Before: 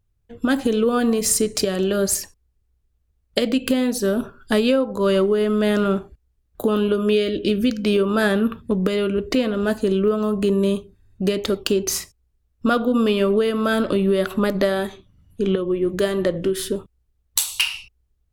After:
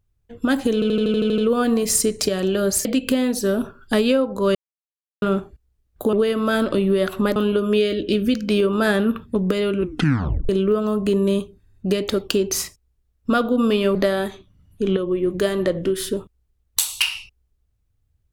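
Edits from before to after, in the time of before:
0.74 stutter 0.08 s, 9 plays
2.21–3.44 cut
5.14–5.81 mute
9.14 tape stop 0.71 s
13.31–14.54 move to 6.72

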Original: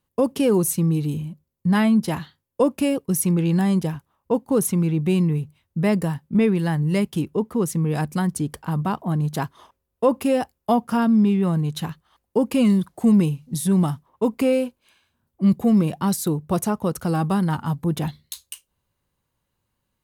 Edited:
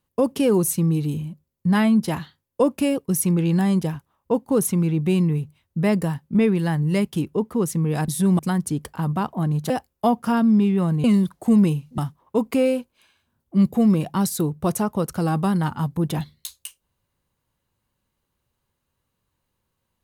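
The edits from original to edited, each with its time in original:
9.39–10.35 cut
11.69–12.6 cut
13.54–13.85 move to 8.08

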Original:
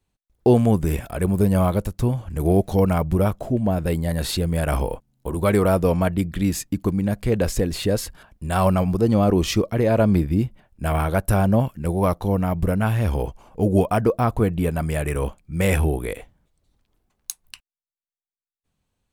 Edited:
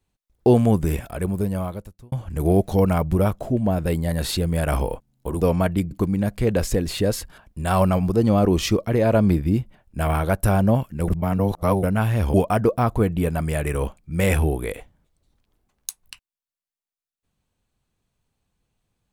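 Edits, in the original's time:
0.85–2.12 fade out
5.41–5.82 cut
6.32–6.76 cut
11.93–12.68 reverse
13.19–13.75 cut

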